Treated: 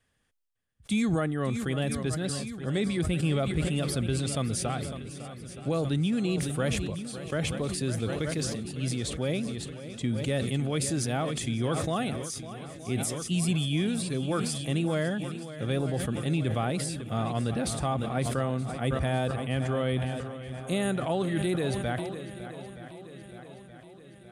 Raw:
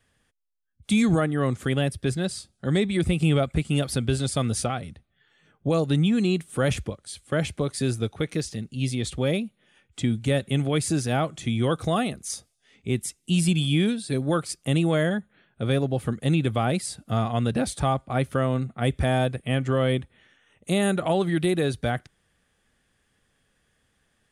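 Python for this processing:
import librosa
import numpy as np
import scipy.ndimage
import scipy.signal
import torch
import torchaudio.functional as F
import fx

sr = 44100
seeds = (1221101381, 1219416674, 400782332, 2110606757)

p1 = x + fx.echo_swing(x, sr, ms=923, ratio=1.5, feedback_pct=54, wet_db=-13.5, dry=0)
p2 = fx.sustainer(p1, sr, db_per_s=30.0)
y = p2 * librosa.db_to_amplitude(-6.0)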